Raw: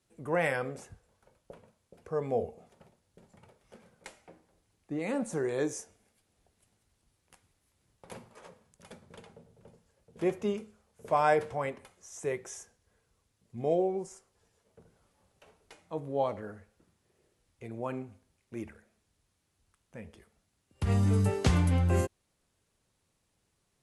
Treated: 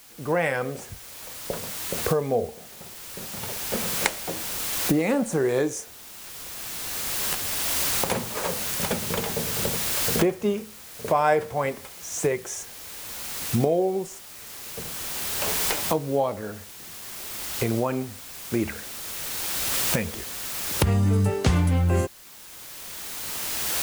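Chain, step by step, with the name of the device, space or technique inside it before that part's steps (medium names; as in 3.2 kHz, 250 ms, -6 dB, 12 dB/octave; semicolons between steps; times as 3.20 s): 18.65–20.03 s: peaking EQ 4.1 kHz +10 dB 2 oct; cheap recorder with automatic gain (white noise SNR 20 dB; recorder AGC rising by 14 dB/s); trim +4.5 dB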